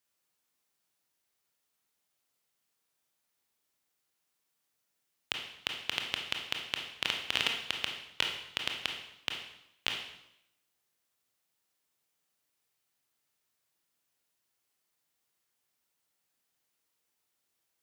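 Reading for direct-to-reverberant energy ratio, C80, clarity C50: 2.0 dB, 7.5 dB, 4.5 dB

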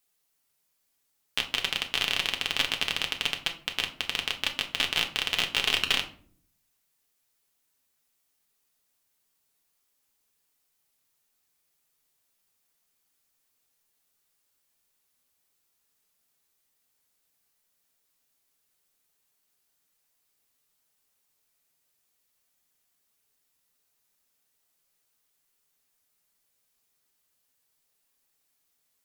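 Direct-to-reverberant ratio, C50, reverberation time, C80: 2.5 dB, 12.5 dB, 0.50 s, 17.0 dB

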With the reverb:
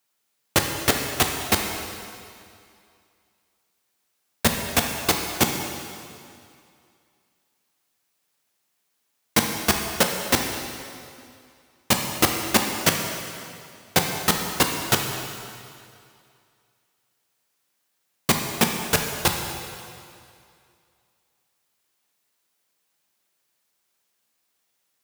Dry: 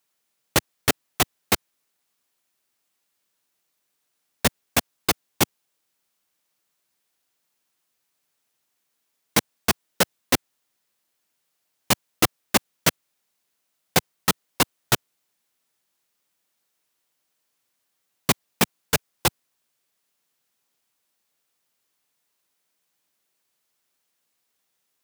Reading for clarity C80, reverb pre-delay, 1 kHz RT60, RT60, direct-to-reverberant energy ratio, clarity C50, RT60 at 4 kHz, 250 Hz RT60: 5.0 dB, 6 ms, 2.4 s, 2.4 s, 2.5 dB, 4.0 dB, 2.2 s, 2.3 s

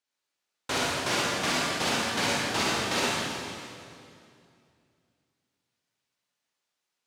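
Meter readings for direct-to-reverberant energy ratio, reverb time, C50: −6.5 dB, 2.5 s, −5.0 dB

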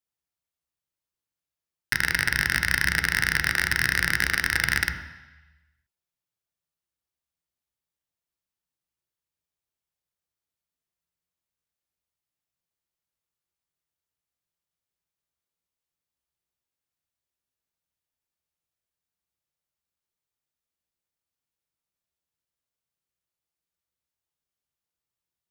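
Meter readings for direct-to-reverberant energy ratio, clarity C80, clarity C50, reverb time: 5.5 dB, 10.5 dB, 9.0 dB, 1.0 s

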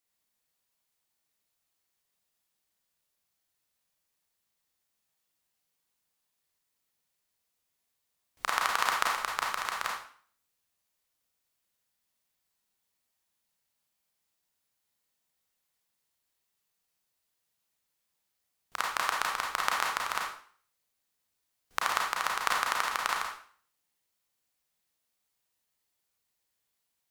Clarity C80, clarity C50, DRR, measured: 7.0 dB, 2.0 dB, −2.0 dB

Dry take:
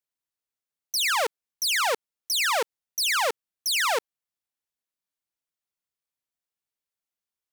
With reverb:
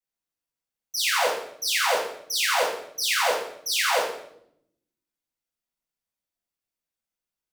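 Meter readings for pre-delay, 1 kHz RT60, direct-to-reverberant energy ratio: 3 ms, 0.60 s, −11.5 dB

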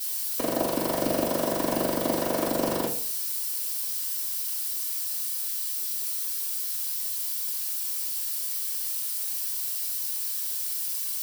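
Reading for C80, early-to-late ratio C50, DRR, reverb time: 12.5 dB, 7.5 dB, −9.0 dB, 0.50 s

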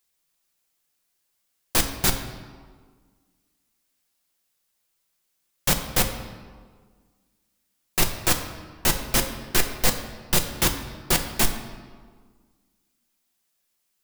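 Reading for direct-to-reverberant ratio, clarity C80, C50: 3.5 dB, 10.0 dB, 8.5 dB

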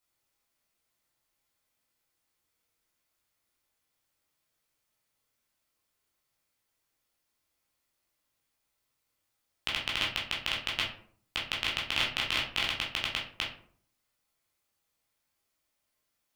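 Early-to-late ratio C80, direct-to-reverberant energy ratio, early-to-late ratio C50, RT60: 11.0 dB, −5.0 dB, 6.0 dB, 0.55 s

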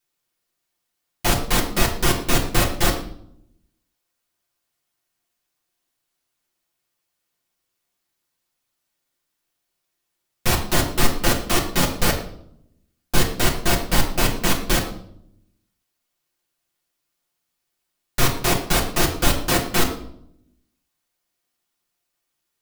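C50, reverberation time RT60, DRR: 8.5 dB, 0.65 s, −3.0 dB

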